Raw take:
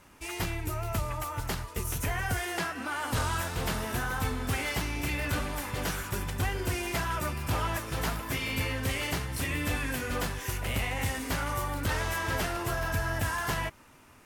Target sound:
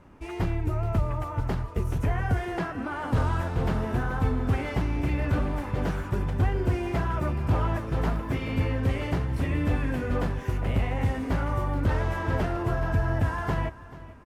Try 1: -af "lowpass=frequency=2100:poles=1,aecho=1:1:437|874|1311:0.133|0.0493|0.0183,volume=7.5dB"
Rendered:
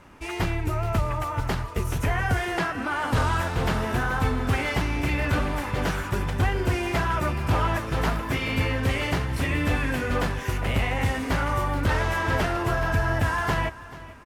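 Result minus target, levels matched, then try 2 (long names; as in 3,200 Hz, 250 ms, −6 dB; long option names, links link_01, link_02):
2,000 Hz band +6.0 dB
-af "lowpass=frequency=530:poles=1,aecho=1:1:437|874|1311:0.133|0.0493|0.0183,volume=7.5dB"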